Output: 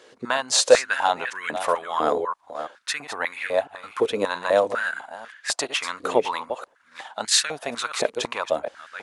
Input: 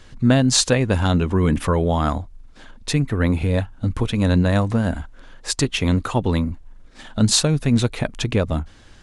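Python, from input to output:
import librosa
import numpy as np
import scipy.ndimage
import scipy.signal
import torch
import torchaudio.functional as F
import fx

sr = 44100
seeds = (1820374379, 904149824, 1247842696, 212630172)

y = fx.reverse_delay(x, sr, ms=334, wet_db=-10.0)
y = fx.filter_held_highpass(y, sr, hz=4.0, low_hz=450.0, high_hz=1800.0)
y = y * librosa.db_to_amplitude(-2.5)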